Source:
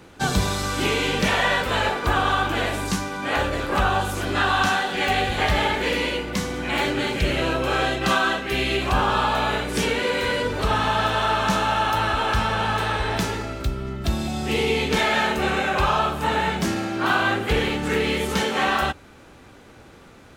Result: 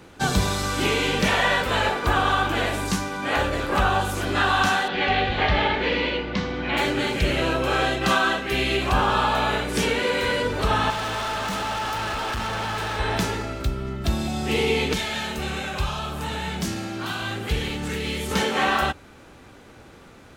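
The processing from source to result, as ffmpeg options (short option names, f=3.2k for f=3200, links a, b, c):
-filter_complex "[0:a]asettb=1/sr,asplit=3[a][b][c];[a]atrim=end=4.884[d];[b]atrim=start=4.88:end=6.77,asetpts=PTS-STARTPTS,afade=t=in:d=0.004:c=qsin,afade=t=out:st=1.886:d=0.004:c=qsin,lowpass=f=4.5k:w=0.5412,lowpass=f=4.5k:w=1.3066[e];[c]atrim=start=6.766[f];[d][e]acrossfade=d=0.004:c1=hsin:c2=qsin[g];[g][f]acrossfade=d=0.004:c1=qsin:c2=hsin,asettb=1/sr,asplit=3[h][i][j];[h]atrim=end=10.904[k];[i]atrim=start=10.9:end=12.99,asetpts=PTS-STARTPTS,afade=t=in:d=0.004:c=qsin,afade=t=out:st=2.086:d=0.004:c=qsin,asoftclip=type=hard:threshold=-25.5dB[l];[j]atrim=start=12.986[m];[k][l]acrossfade=d=0.004:c1=hsin:c2=qsin[n];[n][m]acrossfade=d=0.004:c1=qsin:c2=hsin,asettb=1/sr,asplit=3[o][p][q];[o]atrim=end=14.934[r];[p]atrim=start=14.93:end=18.31,asetpts=PTS-STARTPTS,afade=t=in:d=0.004:c=qsin,afade=t=out:st=3.376:d=0.004:c=qsin,acrossover=split=190|3000[s][t][u];[t]acompressor=threshold=-31dB:ratio=4:attack=3.2:release=140:knee=2.83:detection=peak[v];[s][v][u]amix=inputs=3:normalize=0[w];[q]atrim=start=18.306[x];[r][w]acrossfade=d=0.004:c1=hsin:c2=qsin[y];[y][x]acrossfade=d=0.004:c1=qsin:c2=hsin"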